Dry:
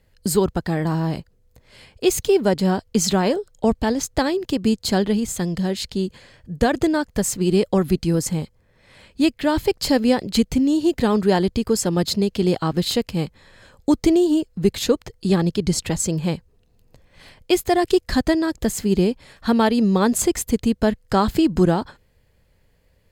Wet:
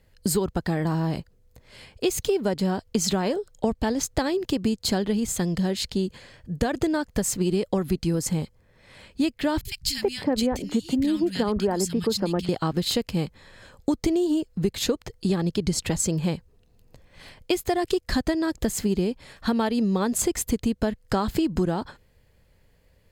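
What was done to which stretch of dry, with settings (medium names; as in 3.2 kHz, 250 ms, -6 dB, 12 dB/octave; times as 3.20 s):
9.61–12.49 s: three bands offset in time lows, highs, mids 40/370 ms, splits 150/1900 Hz
whole clip: compression, threshold -20 dBFS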